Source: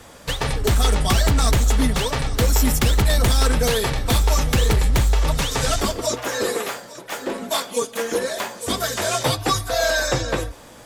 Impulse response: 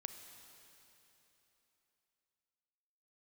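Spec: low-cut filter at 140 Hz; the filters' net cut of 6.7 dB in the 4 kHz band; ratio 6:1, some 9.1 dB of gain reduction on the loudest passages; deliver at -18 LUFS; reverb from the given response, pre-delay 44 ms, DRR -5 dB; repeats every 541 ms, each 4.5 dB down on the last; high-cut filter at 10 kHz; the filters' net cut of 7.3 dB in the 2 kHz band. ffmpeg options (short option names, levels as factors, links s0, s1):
-filter_complex "[0:a]highpass=140,lowpass=10000,equalizer=f=2000:t=o:g=-8.5,equalizer=f=4000:t=o:g=-6,acompressor=threshold=0.0398:ratio=6,aecho=1:1:541|1082|1623|2164|2705|3246|3787|4328|4869:0.596|0.357|0.214|0.129|0.0772|0.0463|0.0278|0.0167|0.01,asplit=2[s0][s1];[1:a]atrim=start_sample=2205,adelay=44[s2];[s1][s2]afir=irnorm=-1:irlink=0,volume=2.66[s3];[s0][s3]amix=inputs=2:normalize=0,volume=2"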